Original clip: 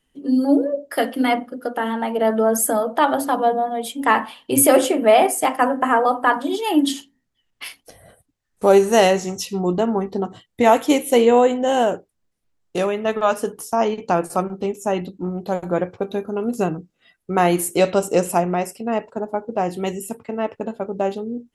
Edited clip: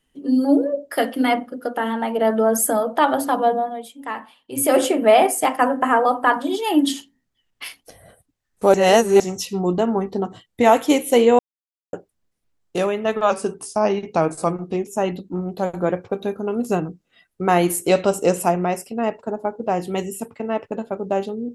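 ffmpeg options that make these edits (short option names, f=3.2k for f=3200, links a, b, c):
-filter_complex "[0:a]asplit=9[a][b][c][d][e][f][g][h][i];[a]atrim=end=3.89,asetpts=PTS-STARTPTS,afade=t=out:st=3.56:d=0.33:silence=0.237137[j];[b]atrim=start=3.89:end=4.52,asetpts=PTS-STARTPTS,volume=-12.5dB[k];[c]atrim=start=4.52:end=8.742,asetpts=PTS-STARTPTS,afade=t=in:d=0.33:silence=0.237137[l];[d]atrim=start=8.738:end=9.202,asetpts=PTS-STARTPTS,areverse[m];[e]atrim=start=9.198:end=11.39,asetpts=PTS-STARTPTS,afade=t=out:st=2.188:d=0.004:c=hsin[n];[f]atrim=start=11.39:end=11.93,asetpts=PTS-STARTPTS,volume=0[o];[g]atrim=start=11.93:end=13.304,asetpts=PTS-STARTPTS,afade=t=in:d=0.004:c=hsin[p];[h]atrim=start=13.3:end=14.76,asetpts=PTS-STARTPTS,asetrate=41013,aresample=44100,atrim=end_sample=69232,asetpts=PTS-STARTPTS[q];[i]atrim=start=14.756[r];[j][k][l]concat=n=3:v=0:a=1[s];[s][m]acrossfade=d=0.004:c1=hsin:c2=hsin[t];[n][o][p]concat=n=3:v=0:a=1[u];[t][u]acrossfade=d=0.004:c1=hsin:c2=hsin[v];[v][q]acrossfade=d=0.004:c1=hsin:c2=hsin[w];[w][r]acrossfade=d=0.004:c1=hsin:c2=hsin"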